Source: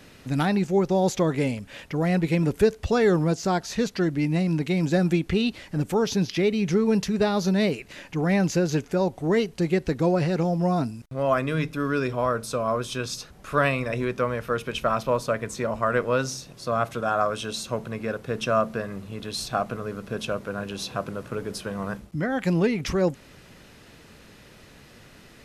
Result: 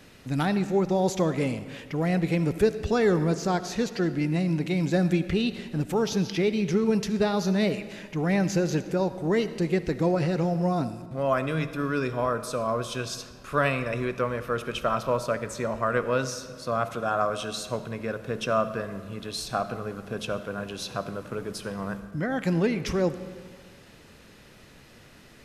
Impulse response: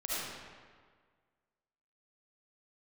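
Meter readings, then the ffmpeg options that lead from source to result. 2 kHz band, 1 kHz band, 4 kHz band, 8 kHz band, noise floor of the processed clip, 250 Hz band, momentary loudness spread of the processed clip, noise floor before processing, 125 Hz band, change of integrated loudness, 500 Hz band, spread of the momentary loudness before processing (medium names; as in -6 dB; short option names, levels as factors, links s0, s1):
-2.0 dB, -2.0 dB, -2.0 dB, -2.0 dB, -51 dBFS, -2.0 dB, 10 LU, -50 dBFS, -2.0 dB, -2.0 dB, -2.0 dB, 10 LU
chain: -filter_complex "[0:a]asplit=2[s0][s1];[1:a]atrim=start_sample=2205[s2];[s1][s2]afir=irnorm=-1:irlink=0,volume=0.158[s3];[s0][s3]amix=inputs=2:normalize=0,volume=0.708"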